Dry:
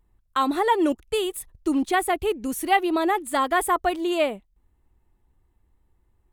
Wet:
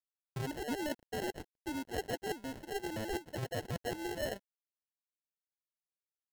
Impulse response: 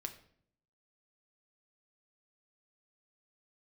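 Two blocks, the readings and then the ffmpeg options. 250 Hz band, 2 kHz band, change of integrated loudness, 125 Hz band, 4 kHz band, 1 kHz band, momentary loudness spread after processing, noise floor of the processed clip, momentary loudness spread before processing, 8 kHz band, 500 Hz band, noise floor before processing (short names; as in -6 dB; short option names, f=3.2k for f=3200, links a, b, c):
-15.5 dB, -15.0 dB, -16.0 dB, n/a, -12.5 dB, -21.0 dB, 4 LU, under -85 dBFS, 7 LU, -13.5 dB, -14.5 dB, -68 dBFS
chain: -filter_complex "[0:a]highshelf=f=4k:g=-4,asplit=2[a][b];[b]alimiter=limit=-21dB:level=0:latency=1:release=141,volume=0dB[c];[a][c]amix=inputs=2:normalize=0,highpass=f=1k:p=1,areverse,acompressor=threshold=-33dB:ratio=8,areverse,lowpass=7.6k,acrusher=samples=37:mix=1:aa=0.000001,aeval=exprs='sgn(val(0))*max(abs(val(0))-0.00133,0)':c=same,volume=-1.5dB"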